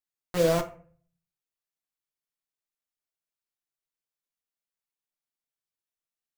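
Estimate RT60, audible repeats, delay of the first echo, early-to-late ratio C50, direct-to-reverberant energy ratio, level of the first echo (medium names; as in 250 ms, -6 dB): 0.45 s, no echo, no echo, 14.0 dB, 6.0 dB, no echo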